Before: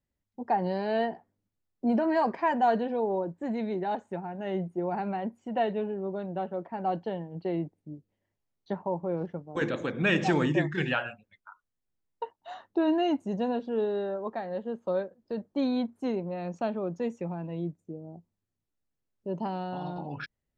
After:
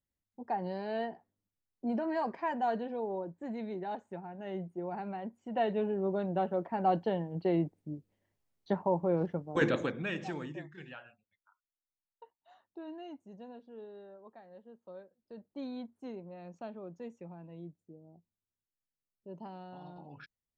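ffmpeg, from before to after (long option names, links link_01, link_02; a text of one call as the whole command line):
ffmpeg -i in.wav -af "volume=8dB,afade=type=in:start_time=5.37:duration=0.68:silence=0.354813,afade=type=out:start_time=9.75:duration=0.29:silence=0.237137,afade=type=out:start_time=10.04:duration=0.66:silence=0.375837,afade=type=in:start_time=15.02:duration=0.51:silence=0.473151" out.wav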